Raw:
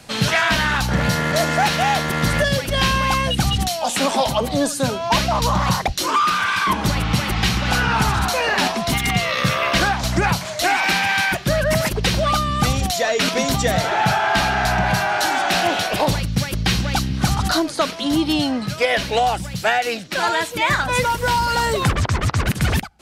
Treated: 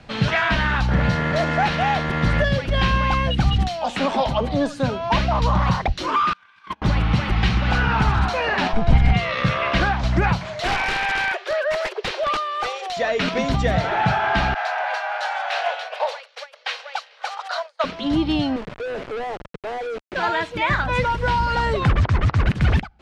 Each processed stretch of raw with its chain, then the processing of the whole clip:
6.33–6.82 gate -16 dBFS, range -33 dB + tilt +2 dB/oct
8.73–9.13 minimum comb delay 1.3 ms + tilt -2.5 dB/oct
10.6–12.97 steep high-pass 370 Hz 96 dB/oct + wrapped overs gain 11.5 dB
14.54–17.84 expander -17 dBFS + steep high-pass 470 Hz 96 dB/oct
18.56–20.16 band-pass 450 Hz, Q 3.7 + companded quantiser 2-bit
whole clip: LPF 3100 Hz 12 dB/oct; low shelf 68 Hz +11 dB; gain -2 dB

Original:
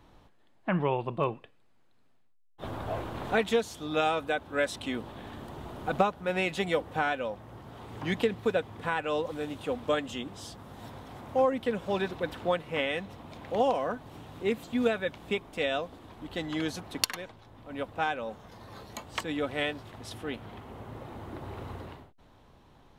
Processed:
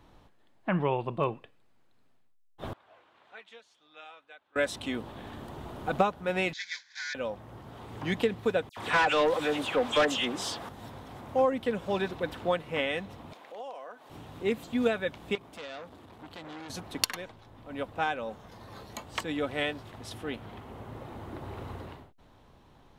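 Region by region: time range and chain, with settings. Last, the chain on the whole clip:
2.73–4.56 LPF 2400 Hz + differentiator + flange 1.8 Hz, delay 1.2 ms, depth 3 ms, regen +80%
6.53–7.15 block floating point 3-bit + elliptic band-pass 1500–7000 Hz + fixed phaser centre 1900 Hz, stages 8
8.69–10.69 dispersion lows, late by 82 ms, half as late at 2600 Hz + overdrive pedal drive 18 dB, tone 6000 Hz, clips at -15.5 dBFS
13.33–14.1 HPF 490 Hz + compressor 2:1, threshold -49 dBFS
15.35–16.7 HPF 61 Hz 24 dB/oct + compressor 5:1, threshold -35 dBFS + core saturation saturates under 2300 Hz
whole clip: dry

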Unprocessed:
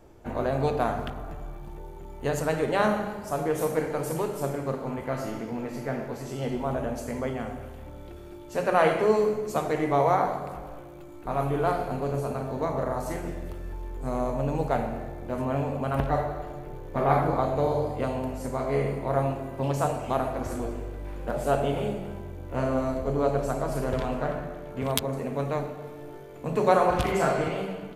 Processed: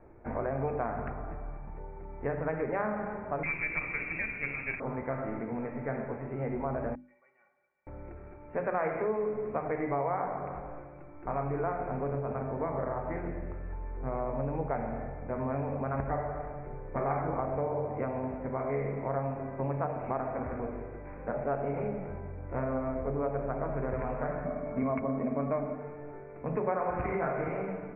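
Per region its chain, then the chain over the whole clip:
3.43–4.8 notch 1300 Hz, Q 27 + inverted band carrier 2800 Hz + running maximum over 5 samples
6.95–7.87 differentiator + metallic resonator 170 Hz, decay 0.21 s, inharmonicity 0.03
24.45–25.75 air absorption 200 m + small resonant body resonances 250/630/1100/2200 Hz, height 12 dB, ringing for 35 ms
whole clip: steep low-pass 2400 Hz 96 dB/oct; notches 50/100/150/200/250/300/350 Hz; compressor 3:1, threshold -28 dBFS; gain -1.5 dB

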